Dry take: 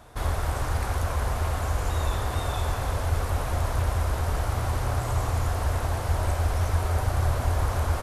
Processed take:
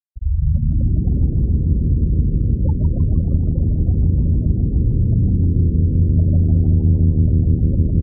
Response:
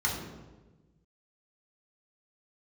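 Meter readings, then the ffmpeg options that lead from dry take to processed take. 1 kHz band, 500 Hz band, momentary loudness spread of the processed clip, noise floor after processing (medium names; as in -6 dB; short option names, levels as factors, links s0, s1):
under -20 dB, -0.5 dB, 3 LU, -22 dBFS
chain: -filter_complex "[0:a]highpass=f=52:p=1,aecho=1:1:170|280.5|352.3|399|429.4:0.631|0.398|0.251|0.158|0.1,asplit=2[s0][s1];[1:a]atrim=start_sample=2205,asetrate=26460,aresample=44100[s2];[s1][s2]afir=irnorm=-1:irlink=0,volume=0.299[s3];[s0][s3]amix=inputs=2:normalize=0,afftfilt=real='re*gte(hypot(re,im),0.447)':imag='im*gte(hypot(re,im),0.447)':win_size=1024:overlap=0.75,acompressor=threshold=0.112:ratio=4,adynamicequalizer=threshold=0.00562:dfrequency=200:dqfactor=1.9:tfrequency=200:tqfactor=1.9:attack=5:release=100:ratio=0.375:range=2.5:mode=boostabove:tftype=bell,aexciter=amount=4.7:drive=4.7:freq=12000,tiltshelf=f=970:g=5,asplit=2[s4][s5];[s5]asplit=6[s6][s7][s8][s9][s10][s11];[s6]adelay=155,afreqshift=77,volume=0.398[s12];[s7]adelay=310,afreqshift=154,volume=0.207[s13];[s8]adelay=465,afreqshift=231,volume=0.107[s14];[s9]adelay=620,afreqshift=308,volume=0.0562[s15];[s10]adelay=775,afreqshift=385,volume=0.0292[s16];[s11]adelay=930,afreqshift=462,volume=0.0151[s17];[s12][s13][s14][s15][s16][s17]amix=inputs=6:normalize=0[s18];[s4][s18]amix=inputs=2:normalize=0"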